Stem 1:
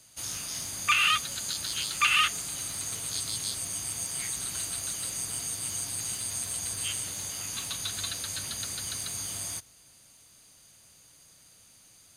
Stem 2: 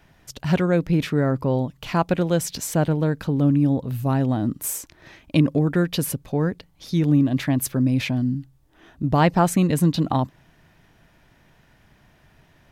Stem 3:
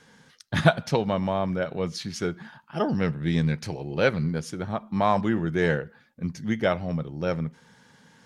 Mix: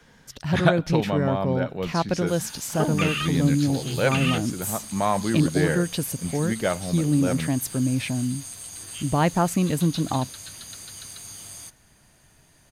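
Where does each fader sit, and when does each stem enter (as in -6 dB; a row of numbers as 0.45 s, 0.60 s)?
-5.0 dB, -3.5 dB, -1.0 dB; 2.10 s, 0.00 s, 0.00 s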